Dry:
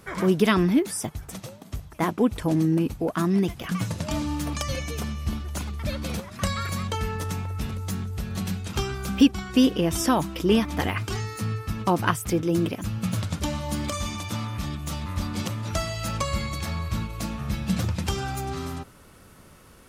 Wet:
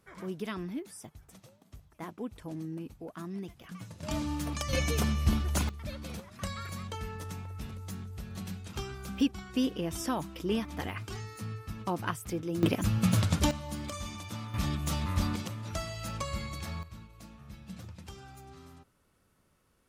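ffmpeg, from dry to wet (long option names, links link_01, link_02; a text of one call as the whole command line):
ffmpeg -i in.wav -af "asetnsamples=nb_out_samples=441:pad=0,asendcmd='4.03 volume volume -5.5dB;4.73 volume volume 2dB;5.69 volume volume -10.5dB;12.63 volume volume 1.5dB;13.51 volume volume -9.5dB;14.54 volume volume -0.5dB;15.36 volume volume -8.5dB;16.83 volume volume -19.5dB',volume=-17dB" out.wav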